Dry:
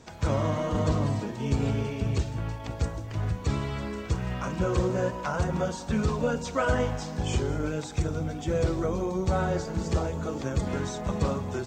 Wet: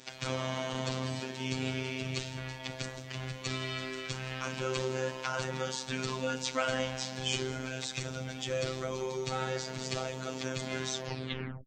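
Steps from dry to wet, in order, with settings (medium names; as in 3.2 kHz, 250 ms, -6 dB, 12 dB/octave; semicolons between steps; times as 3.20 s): tape stop on the ending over 0.73 s; in parallel at -2.5 dB: peak limiter -23.5 dBFS, peak gain reduction 11 dB; on the sum: frequency weighting D; robot voice 130 Hz; trim -7 dB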